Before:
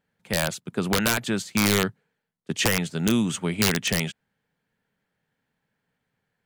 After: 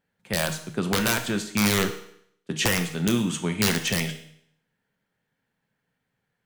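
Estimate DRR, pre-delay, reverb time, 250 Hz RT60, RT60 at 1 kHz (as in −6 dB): 5.5 dB, 6 ms, 0.65 s, 0.70 s, 0.65 s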